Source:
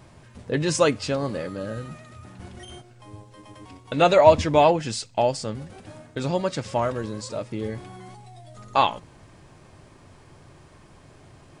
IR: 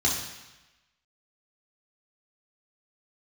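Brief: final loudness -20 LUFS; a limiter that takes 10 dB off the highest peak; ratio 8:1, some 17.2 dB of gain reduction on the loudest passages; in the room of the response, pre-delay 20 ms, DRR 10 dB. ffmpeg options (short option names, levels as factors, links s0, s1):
-filter_complex "[0:a]acompressor=threshold=0.0447:ratio=8,alimiter=limit=0.0631:level=0:latency=1,asplit=2[s0][s1];[1:a]atrim=start_sample=2205,adelay=20[s2];[s1][s2]afir=irnorm=-1:irlink=0,volume=0.0841[s3];[s0][s3]amix=inputs=2:normalize=0,volume=6.31"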